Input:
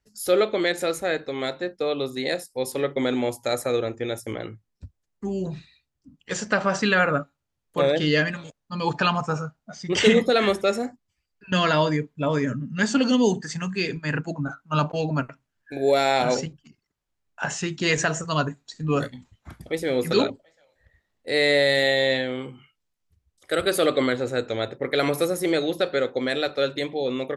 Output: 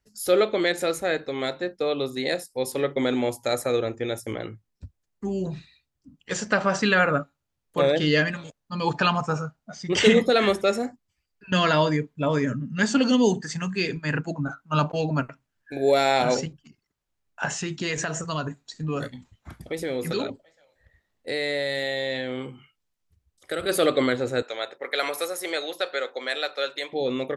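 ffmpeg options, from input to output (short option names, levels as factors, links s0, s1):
-filter_complex "[0:a]asplit=3[s0][s1][s2];[s0]afade=t=out:st=17.53:d=0.02[s3];[s1]acompressor=threshold=0.0562:ratio=3:attack=3.2:release=140:knee=1:detection=peak,afade=t=in:st=17.53:d=0.02,afade=t=out:st=23.68:d=0.02[s4];[s2]afade=t=in:st=23.68:d=0.02[s5];[s3][s4][s5]amix=inputs=3:normalize=0,asettb=1/sr,asplit=3[s6][s7][s8];[s6]atrim=end=24.424[s9];[s7]atrim=start=24.42:end=26.93,asetpts=PTS-STARTPTS,afade=t=in:d=0.004:c=qsin,afade=t=out:st=2.506:d=0.004:c=qsin,highpass=680[s10];[s8]atrim=start=26.926[s11];[s9][s10]acrossfade=d=0.004:c1=hsin:c2=qsin[s12];[s12][s11]acrossfade=d=0.004:c1=qsin:c2=hsin"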